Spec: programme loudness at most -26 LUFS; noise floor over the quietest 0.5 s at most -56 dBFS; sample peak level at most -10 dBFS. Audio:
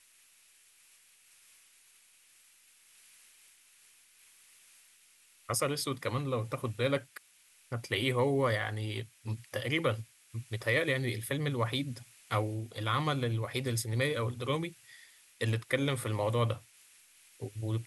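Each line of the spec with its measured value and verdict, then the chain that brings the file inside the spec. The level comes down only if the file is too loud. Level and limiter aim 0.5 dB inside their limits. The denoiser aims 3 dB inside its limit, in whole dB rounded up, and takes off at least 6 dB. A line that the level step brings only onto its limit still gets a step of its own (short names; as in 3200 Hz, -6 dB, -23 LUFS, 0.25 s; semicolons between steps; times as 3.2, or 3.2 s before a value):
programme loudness -33.0 LUFS: OK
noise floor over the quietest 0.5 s -63 dBFS: OK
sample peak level -16.0 dBFS: OK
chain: none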